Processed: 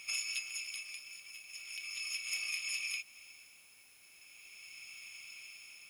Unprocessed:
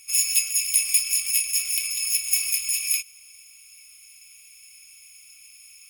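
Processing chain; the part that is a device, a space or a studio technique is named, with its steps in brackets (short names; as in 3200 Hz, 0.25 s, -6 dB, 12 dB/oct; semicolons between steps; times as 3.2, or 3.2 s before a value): medium wave at night (BPF 160–3600 Hz; compressor, threshold -42 dBFS, peak gain reduction 14.5 dB; tremolo 0.39 Hz, depth 79%; whine 10000 Hz -73 dBFS; white noise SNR 23 dB); gain +7 dB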